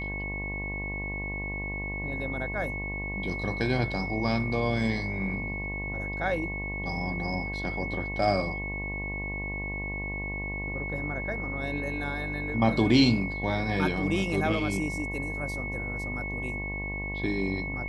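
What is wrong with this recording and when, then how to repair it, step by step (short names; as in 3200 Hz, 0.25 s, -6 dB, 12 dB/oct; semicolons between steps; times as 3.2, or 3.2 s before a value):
buzz 50 Hz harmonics 22 -36 dBFS
tone 2200 Hz -34 dBFS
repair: de-hum 50 Hz, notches 22; notch 2200 Hz, Q 30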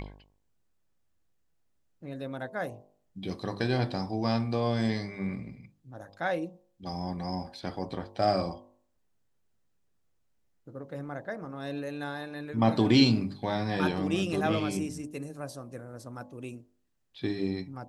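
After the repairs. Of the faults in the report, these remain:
none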